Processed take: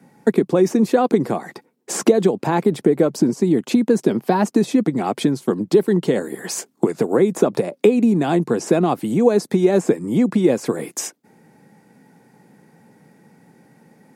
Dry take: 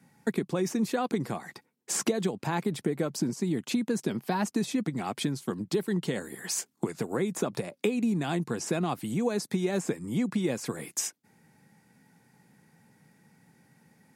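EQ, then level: high-pass 100 Hz; peaking EQ 430 Hz +11 dB 2.6 oct; +4.0 dB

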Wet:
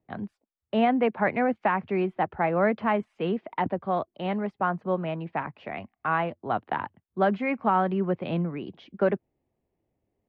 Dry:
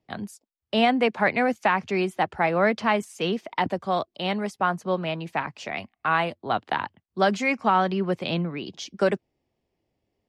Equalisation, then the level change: distance through air 470 m; treble shelf 5.1 kHz -11.5 dB; 0.0 dB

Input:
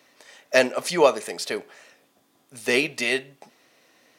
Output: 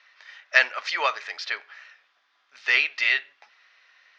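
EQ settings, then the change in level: resonant high-pass 1.5 kHz, resonance Q 1.7; steep low-pass 5.8 kHz 36 dB/octave; distance through air 110 m; +2.0 dB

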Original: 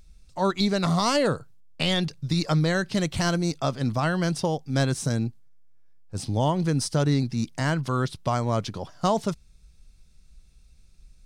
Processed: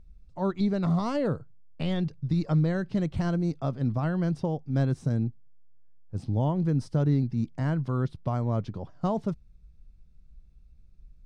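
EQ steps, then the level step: low-pass 1.4 kHz 6 dB/octave; bass shelf 410 Hz +8.5 dB; -8.0 dB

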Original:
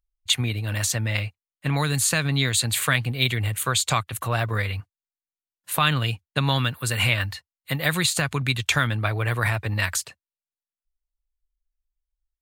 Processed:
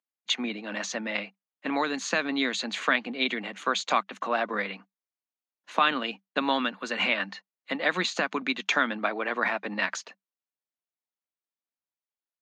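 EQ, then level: rippled Chebyshev high-pass 190 Hz, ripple 3 dB; resonant low-pass 6.5 kHz, resonance Q 6.5; distance through air 330 m; +2.5 dB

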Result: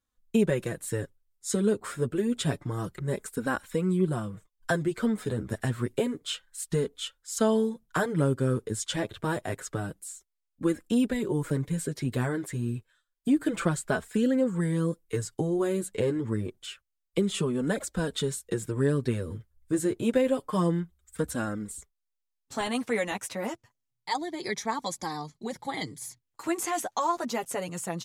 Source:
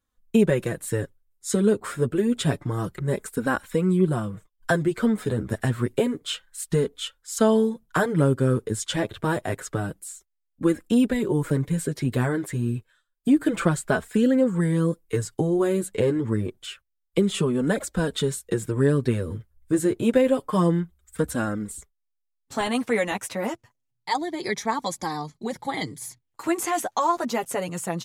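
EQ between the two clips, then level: peaking EQ 6.1 kHz +3 dB 1.7 oct; -5.0 dB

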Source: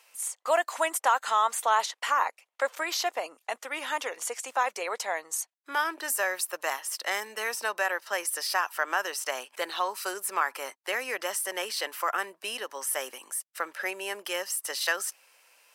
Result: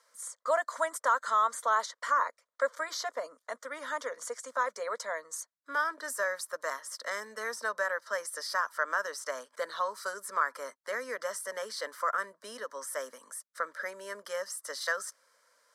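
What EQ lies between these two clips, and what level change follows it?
distance through air 59 m; static phaser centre 530 Hz, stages 8; 0.0 dB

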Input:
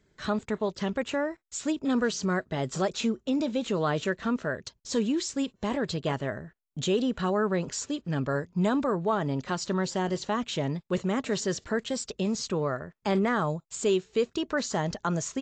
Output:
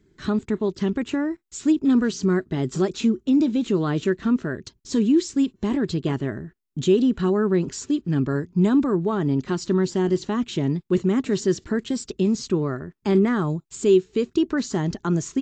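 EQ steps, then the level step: resonant low shelf 440 Hz +6 dB, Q 3; 0.0 dB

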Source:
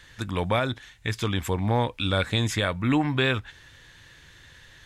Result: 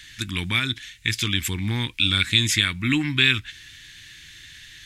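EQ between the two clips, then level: FFT filter 340 Hz 0 dB, 550 Hz -24 dB, 2.2 kHz +10 dB; 0.0 dB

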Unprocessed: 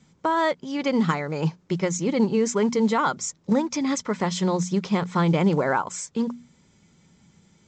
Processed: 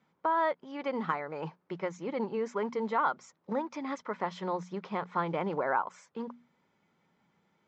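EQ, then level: band-pass filter 1 kHz, Q 0.81; distance through air 87 m; -4.0 dB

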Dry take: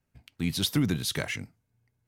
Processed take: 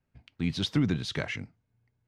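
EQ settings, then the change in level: distance through air 130 m; 0.0 dB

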